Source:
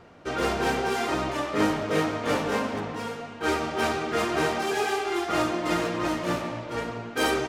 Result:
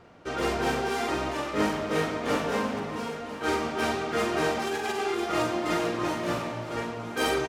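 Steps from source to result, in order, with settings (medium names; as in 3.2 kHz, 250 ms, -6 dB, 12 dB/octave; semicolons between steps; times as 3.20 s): 4.67–5.19 s: compressor with a negative ratio -28 dBFS, ratio -0.5; doubling 43 ms -7 dB; multi-head delay 334 ms, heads first and third, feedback 63%, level -17 dB; trim -2.5 dB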